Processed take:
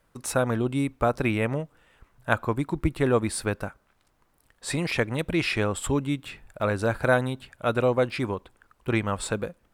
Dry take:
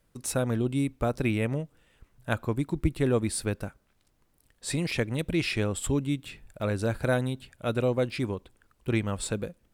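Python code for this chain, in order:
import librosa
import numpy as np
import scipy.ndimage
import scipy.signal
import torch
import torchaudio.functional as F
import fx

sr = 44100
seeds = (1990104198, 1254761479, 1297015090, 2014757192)

y = fx.peak_eq(x, sr, hz=1100.0, db=9.0, octaves=2.0)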